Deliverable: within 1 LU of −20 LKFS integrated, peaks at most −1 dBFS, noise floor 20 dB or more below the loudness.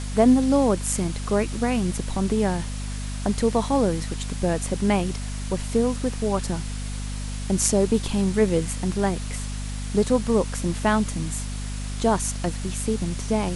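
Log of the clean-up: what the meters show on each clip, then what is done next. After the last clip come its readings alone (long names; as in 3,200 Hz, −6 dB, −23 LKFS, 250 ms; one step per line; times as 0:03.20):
mains hum 50 Hz; hum harmonics up to 250 Hz; level of the hum −28 dBFS; background noise floor −31 dBFS; target noise floor −45 dBFS; integrated loudness −24.5 LKFS; sample peak −5.0 dBFS; target loudness −20.0 LKFS
→ mains-hum notches 50/100/150/200/250 Hz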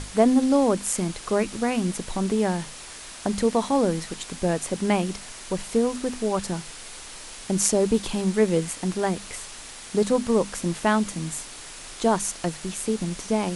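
mains hum none found; background noise floor −41 dBFS; target noise floor −45 dBFS
→ broadband denoise 6 dB, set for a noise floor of −41 dBFS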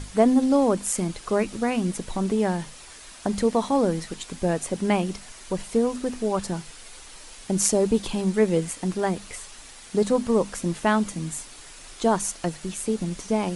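background noise floor −45 dBFS; integrated loudness −25.0 LKFS; sample peak −4.5 dBFS; target loudness −20.0 LKFS
→ level +5 dB
brickwall limiter −1 dBFS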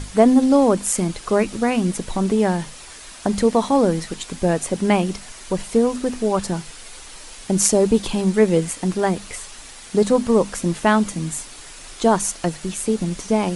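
integrated loudness −20.0 LKFS; sample peak −1.0 dBFS; background noise floor −40 dBFS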